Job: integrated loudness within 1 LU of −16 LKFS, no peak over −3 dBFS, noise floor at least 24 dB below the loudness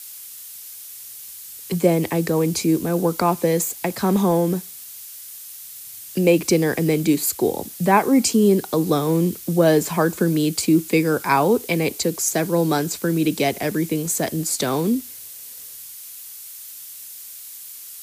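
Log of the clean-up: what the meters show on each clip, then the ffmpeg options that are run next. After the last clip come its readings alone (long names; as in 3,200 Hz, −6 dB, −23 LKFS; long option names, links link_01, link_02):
background noise floor −38 dBFS; target noise floor −44 dBFS; integrated loudness −20.0 LKFS; sample peak −3.5 dBFS; target loudness −16.0 LKFS
→ -af "afftdn=noise_reduction=6:noise_floor=-38"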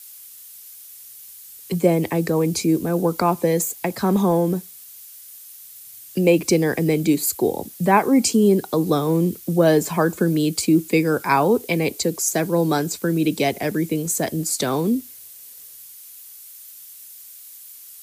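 background noise floor −42 dBFS; target noise floor −44 dBFS
→ -af "afftdn=noise_reduction=6:noise_floor=-42"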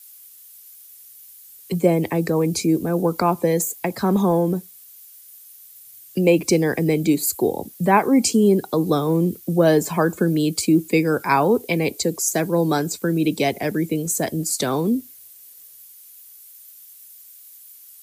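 background noise floor −46 dBFS; integrated loudness −20.0 LKFS; sample peak −3.5 dBFS; target loudness −16.0 LKFS
→ -af "volume=4dB,alimiter=limit=-3dB:level=0:latency=1"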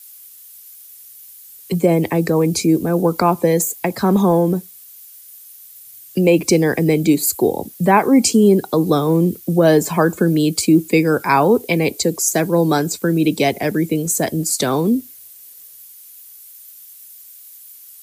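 integrated loudness −16.5 LKFS; sample peak −3.0 dBFS; background noise floor −42 dBFS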